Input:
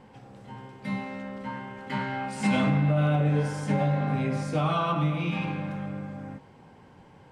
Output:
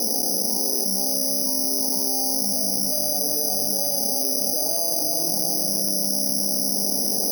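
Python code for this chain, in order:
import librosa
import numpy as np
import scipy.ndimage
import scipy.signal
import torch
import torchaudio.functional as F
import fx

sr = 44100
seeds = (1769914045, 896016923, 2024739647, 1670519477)

p1 = fx.cvsd(x, sr, bps=16000)
p2 = scipy.signal.sosfilt(scipy.signal.ellip(3, 1.0, 40, [220.0, 710.0], 'bandpass', fs=sr, output='sos'), p1)
p3 = fx.dynamic_eq(p2, sr, hz=280.0, q=1.3, threshold_db=-42.0, ratio=4.0, max_db=-6)
p4 = p3 + fx.echo_feedback(p3, sr, ms=356, feedback_pct=45, wet_db=-6, dry=0)
p5 = (np.kron(scipy.signal.resample_poly(p4, 1, 8), np.eye(8)[0]) * 8)[:len(p4)]
p6 = fx.env_flatten(p5, sr, amount_pct=100)
y = p6 * 10.0 ** (-2.5 / 20.0)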